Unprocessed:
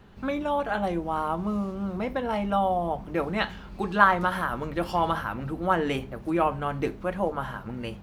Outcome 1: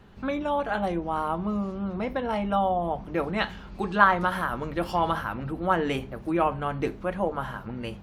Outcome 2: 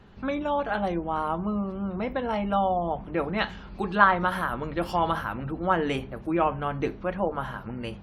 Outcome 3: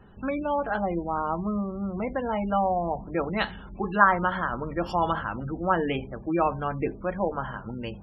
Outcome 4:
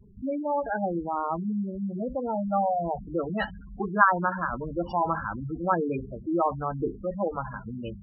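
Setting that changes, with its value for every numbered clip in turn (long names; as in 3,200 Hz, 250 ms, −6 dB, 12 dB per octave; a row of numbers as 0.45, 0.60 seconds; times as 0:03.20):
gate on every frequency bin, under each frame's peak: −55, −45, −25, −10 decibels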